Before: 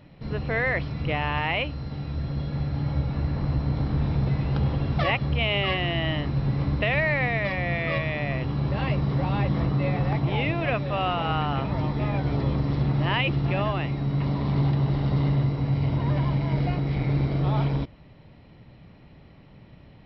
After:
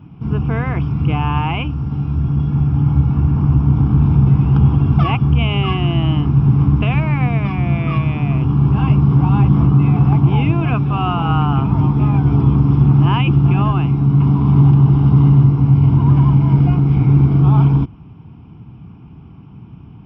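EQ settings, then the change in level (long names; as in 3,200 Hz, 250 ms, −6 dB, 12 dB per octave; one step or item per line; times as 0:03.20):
high-pass filter 73 Hz
tilt shelving filter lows +8 dB, about 1,500 Hz
phaser with its sweep stopped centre 2,800 Hz, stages 8
+6.5 dB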